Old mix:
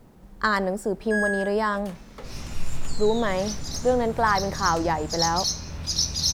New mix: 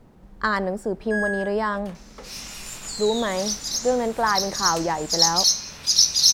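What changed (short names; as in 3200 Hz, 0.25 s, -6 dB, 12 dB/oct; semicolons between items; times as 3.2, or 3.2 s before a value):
second sound: add tilt +4.5 dB/oct; master: add high shelf 7100 Hz -8.5 dB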